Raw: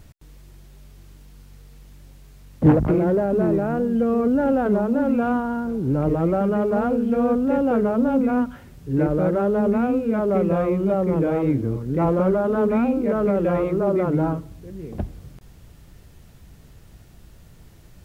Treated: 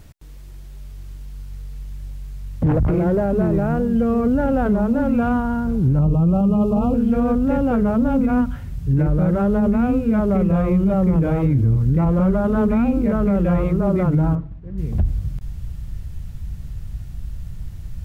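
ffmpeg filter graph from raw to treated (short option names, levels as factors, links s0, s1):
-filter_complex "[0:a]asettb=1/sr,asplit=3[s0][s1][s2];[s0]atrim=end=5.994[s3];[s1]atrim=start=5.99:end=6.94,asetpts=PTS-STARTPTS,afade=t=in:d=0.004:c=qsin,afade=t=out:st=0.946:d=0.004:c=qsin,asuperstop=centerf=1800:order=20:qfactor=1.6,equalizer=f=170:w=2.2:g=6[s4];[s2]atrim=start=6.936[s5];[s3][s4]acrossfade=d=0.004:c1=hsin:c2=qsin[s6];[s6][s5]acrossfade=d=0.004:c1=qsin:c2=hsin,asettb=1/sr,asplit=3[s7][s8][s9];[s7]atrim=end=14.354[s10];[s8]atrim=start=14.35:end=14.78,asetpts=PTS-STARTPTS,afade=t=in:d=0.004:c=qsin,afade=t=out:st=0.426:d=0.004:c=qsin,lowpass=1700,agate=range=0.0224:threshold=0.0126:ratio=3:release=100:detection=peak,equalizer=f=70:w=1:g=-13.5[s11];[s9]atrim=start=14.776[s12];[s10][s11]acrossfade=d=0.004:c1=hsin:c2=qsin[s13];[s13][s12]acrossfade=d=0.004:c1=qsin:c2=hsin,asubboost=boost=7.5:cutoff=130,alimiter=limit=0.224:level=0:latency=1:release=49,volume=1.33"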